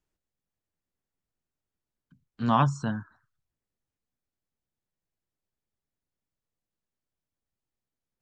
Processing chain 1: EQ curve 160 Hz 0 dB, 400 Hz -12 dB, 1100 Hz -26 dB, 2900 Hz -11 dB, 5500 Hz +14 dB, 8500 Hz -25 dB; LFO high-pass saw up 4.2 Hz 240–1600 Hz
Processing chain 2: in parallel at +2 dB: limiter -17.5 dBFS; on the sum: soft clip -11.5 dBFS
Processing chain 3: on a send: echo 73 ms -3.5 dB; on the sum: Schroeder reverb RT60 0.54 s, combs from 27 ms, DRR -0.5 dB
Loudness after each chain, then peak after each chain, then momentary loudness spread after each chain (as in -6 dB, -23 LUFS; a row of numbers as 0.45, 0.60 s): -38.5, -23.5, -21.5 LUFS; -22.0, -12.0, -3.5 dBFS; 11, 7, 14 LU